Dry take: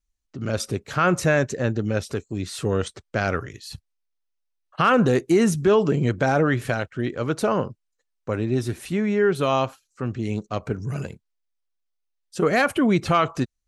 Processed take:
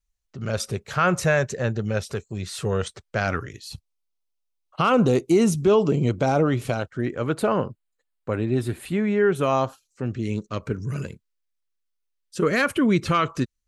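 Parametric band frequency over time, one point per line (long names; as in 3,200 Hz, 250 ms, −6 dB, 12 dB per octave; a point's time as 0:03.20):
parametric band −13.5 dB 0.35 octaves
0:03.20 290 Hz
0:03.65 1,700 Hz
0:06.75 1,700 Hz
0:07.31 5,800 Hz
0:09.24 5,800 Hz
0:10.26 740 Hz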